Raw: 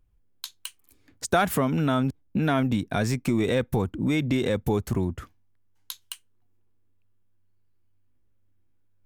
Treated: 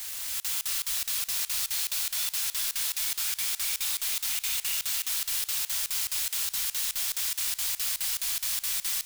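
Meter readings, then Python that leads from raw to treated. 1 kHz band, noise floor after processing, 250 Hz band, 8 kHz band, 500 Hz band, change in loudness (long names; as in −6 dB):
−14.5 dB, −47 dBFS, below −40 dB, +14.5 dB, below −30 dB, −1.5 dB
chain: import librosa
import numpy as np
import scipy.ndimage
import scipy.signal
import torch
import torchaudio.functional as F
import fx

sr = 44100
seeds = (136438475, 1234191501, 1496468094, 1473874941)

y = fx.cvsd(x, sr, bps=64000)
y = fx.tilt_eq(y, sr, slope=3.5)
y = fx.auto_wah(y, sr, base_hz=530.0, top_hz=4300.0, q=21.0, full_db=-22.0, direction='up')
y = fx.quant_dither(y, sr, seeds[0], bits=6, dither='triangular')
y = fx.tone_stack(y, sr, knobs='10-0-10')
y = fx.echo_stepped(y, sr, ms=292, hz=3600.0, octaves=0.7, feedback_pct=70, wet_db=-4)
y = fx.rev_gated(y, sr, seeds[1], gate_ms=420, shape='rising', drr_db=-6.0)
y = fx.buffer_crackle(y, sr, first_s=0.4, period_s=0.21, block=2048, kind='zero')
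y = fx.echo_warbled(y, sr, ms=292, feedback_pct=64, rate_hz=2.8, cents=56, wet_db=-18)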